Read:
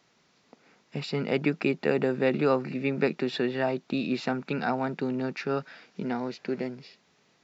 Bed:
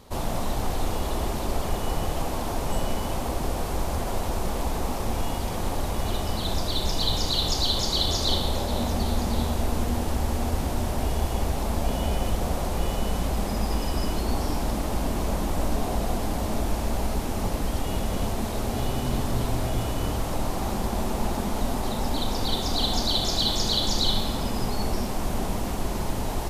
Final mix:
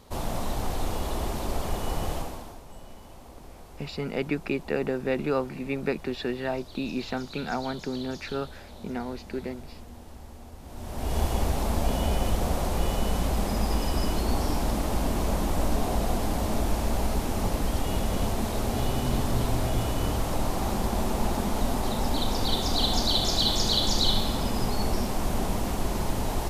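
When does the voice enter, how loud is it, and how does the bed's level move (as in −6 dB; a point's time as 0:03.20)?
2.85 s, −2.5 dB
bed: 0:02.14 −2.5 dB
0:02.64 −19 dB
0:10.60 −19 dB
0:11.18 0 dB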